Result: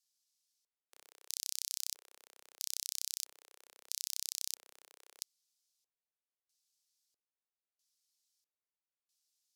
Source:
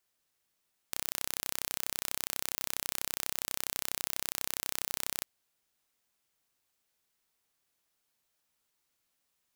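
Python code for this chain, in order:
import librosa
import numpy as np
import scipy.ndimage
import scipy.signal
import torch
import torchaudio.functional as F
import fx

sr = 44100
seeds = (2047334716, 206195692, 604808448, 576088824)

y = np.diff(x, prepend=0.0)
y = fx.filter_lfo_bandpass(y, sr, shape='square', hz=0.77, low_hz=460.0, high_hz=5000.0, q=1.8)
y = y * librosa.db_to_amplitude(6.0)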